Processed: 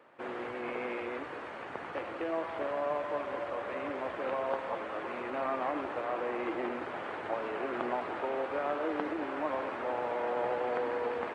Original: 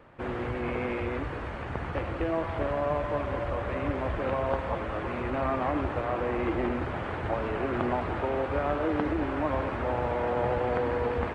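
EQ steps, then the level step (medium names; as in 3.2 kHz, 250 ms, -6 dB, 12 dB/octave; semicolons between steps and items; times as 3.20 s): high-pass 330 Hz 12 dB/octave; -3.5 dB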